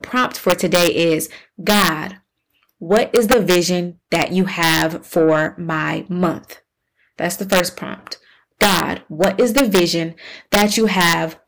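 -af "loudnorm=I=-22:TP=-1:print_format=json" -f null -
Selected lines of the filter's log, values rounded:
"input_i" : "-16.7",
"input_tp" : "-3.4",
"input_lra" : "3.8",
"input_thresh" : "-27.4",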